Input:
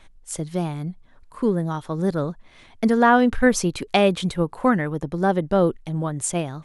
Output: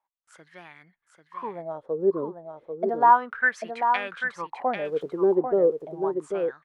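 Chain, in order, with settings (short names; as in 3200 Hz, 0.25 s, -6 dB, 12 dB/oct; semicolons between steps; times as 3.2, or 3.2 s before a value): 4.85–5.35 switching spikes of -19 dBFS; gate with hold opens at -39 dBFS; wah 0.33 Hz 380–1900 Hz, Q 7.6; on a send: echo 0.792 s -6.5 dB; on the sum: gain +7 dB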